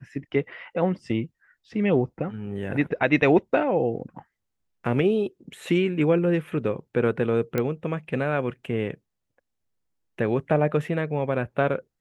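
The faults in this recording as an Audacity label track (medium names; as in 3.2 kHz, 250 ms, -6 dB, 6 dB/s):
7.580000	7.580000	pop -12 dBFS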